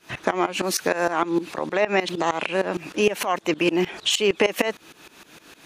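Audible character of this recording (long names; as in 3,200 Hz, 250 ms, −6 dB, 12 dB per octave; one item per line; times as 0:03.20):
tremolo saw up 6.5 Hz, depth 90%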